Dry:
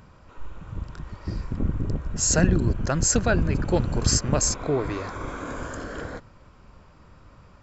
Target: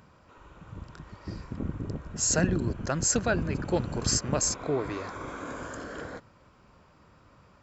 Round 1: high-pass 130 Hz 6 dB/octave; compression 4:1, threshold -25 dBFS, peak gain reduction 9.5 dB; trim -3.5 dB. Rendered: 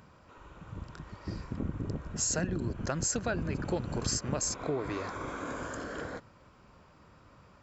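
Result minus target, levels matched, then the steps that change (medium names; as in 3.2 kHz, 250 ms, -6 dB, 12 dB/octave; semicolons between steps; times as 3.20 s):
compression: peak gain reduction +9.5 dB
remove: compression 4:1, threshold -25 dBFS, peak gain reduction 9.5 dB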